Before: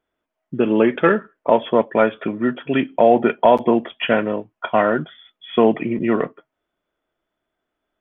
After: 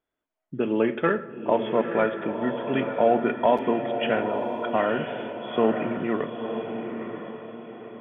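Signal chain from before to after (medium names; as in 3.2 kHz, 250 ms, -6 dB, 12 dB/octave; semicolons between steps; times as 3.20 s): echo that smears into a reverb 942 ms, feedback 41%, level -6.5 dB; reverberation RT60 1.3 s, pre-delay 7 ms, DRR 13 dB; trim -7.5 dB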